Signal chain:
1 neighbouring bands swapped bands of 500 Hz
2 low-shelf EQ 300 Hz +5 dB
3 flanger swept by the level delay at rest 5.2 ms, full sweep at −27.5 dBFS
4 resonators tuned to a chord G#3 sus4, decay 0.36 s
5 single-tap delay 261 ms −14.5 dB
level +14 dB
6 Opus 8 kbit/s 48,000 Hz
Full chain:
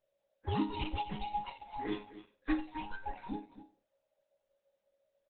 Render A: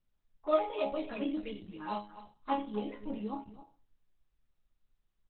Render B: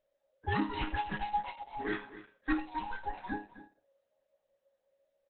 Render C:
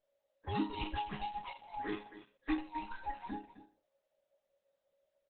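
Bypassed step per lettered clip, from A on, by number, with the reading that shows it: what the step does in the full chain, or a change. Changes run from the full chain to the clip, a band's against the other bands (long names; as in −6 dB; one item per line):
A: 1, 500 Hz band +13.5 dB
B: 3, 2 kHz band +7.5 dB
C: 2, 125 Hz band −3.0 dB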